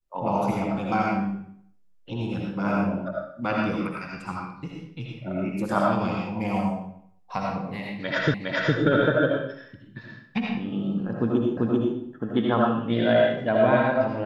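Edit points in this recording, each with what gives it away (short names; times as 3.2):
8.34 repeat of the last 0.41 s
11.57 repeat of the last 0.39 s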